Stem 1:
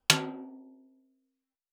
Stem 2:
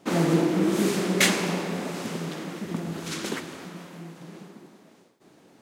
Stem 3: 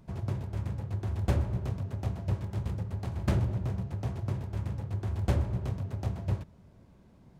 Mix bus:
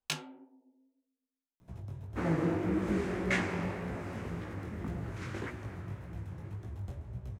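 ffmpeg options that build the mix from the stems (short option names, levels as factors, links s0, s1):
-filter_complex "[0:a]volume=0.316[s0];[1:a]acrossover=split=8200[s1][s2];[s2]acompressor=threshold=0.00282:ratio=4:attack=1:release=60[s3];[s1][s3]amix=inputs=2:normalize=0,highshelf=f=2700:t=q:w=1.5:g=-9,adelay=2100,volume=0.501[s4];[2:a]highshelf=f=9900:g=7.5,acrossover=split=110|570[s5][s6][s7];[s5]acompressor=threshold=0.02:ratio=4[s8];[s6]acompressor=threshold=0.00631:ratio=4[s9];[s7]acompressor=threshold=0.00158:ratio=4[s10];[s8][s9][s10]amix=inputs=3:normalize=0,bandreject=f=4600:w=10,adelay=1600,volume=0.708[s11];[s0][s4][s11]amix=inputs=3:normalize=0,flanger=delay=16:depth=6.9:speed=1.8"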